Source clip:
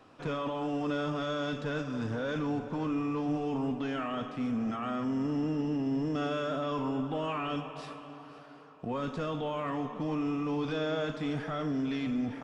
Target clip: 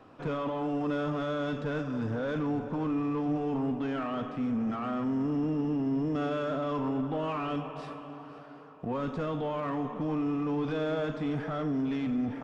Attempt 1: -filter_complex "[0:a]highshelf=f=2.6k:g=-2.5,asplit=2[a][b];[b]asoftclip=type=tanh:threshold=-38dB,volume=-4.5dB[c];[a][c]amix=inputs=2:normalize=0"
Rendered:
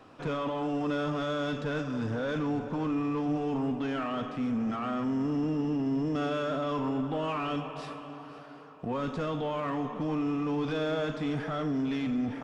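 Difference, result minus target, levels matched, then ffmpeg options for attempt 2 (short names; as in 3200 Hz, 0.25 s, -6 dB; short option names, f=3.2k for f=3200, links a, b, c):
4000 Hz band +4.5 dB
-filter_complex "[0:a]highshelf=f=2.6k:g=-10.5,asplit=2[a][b];[b]asoftclip=type=tanh:threshold=-38dB,volume=-4.5dB[c];[a][c]amix=inputs=2:normalize=0"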